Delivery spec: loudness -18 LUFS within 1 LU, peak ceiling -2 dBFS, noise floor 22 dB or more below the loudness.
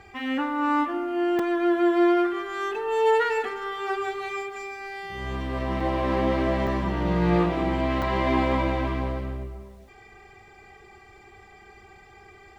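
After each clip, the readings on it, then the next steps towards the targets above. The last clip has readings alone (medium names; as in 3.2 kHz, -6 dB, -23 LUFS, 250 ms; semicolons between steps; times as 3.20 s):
dropouts 4; longest dropout 3.7 ms; loudness -25.5 LUFS; peak level -10.5 dBFS; loudness target -18.0 LUFS
-> interpolate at 1.39/5.80/6.67/8.02 s, 3.7 ms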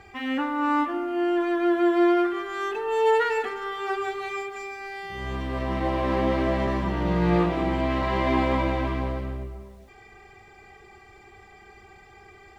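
dropouts 0; loudness -25.5 LUFS; peak level -10.5 dBFS; loudness target -18.0 LUFS
-> trim +7.5 dB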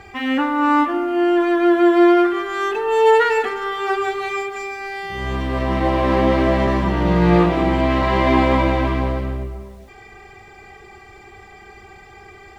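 loudness -18.0 LUFS; peak level -3.0 dBFS; noise floor -44 dBFS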